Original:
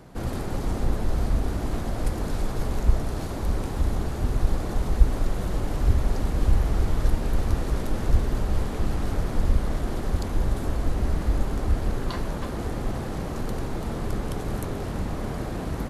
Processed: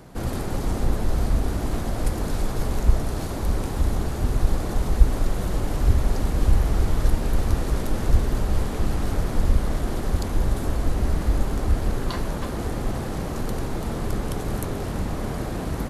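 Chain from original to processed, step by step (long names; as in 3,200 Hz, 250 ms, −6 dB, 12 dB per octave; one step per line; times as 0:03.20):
high-shelf EQ 6,600 Hz +4.5 dB
level +2 dB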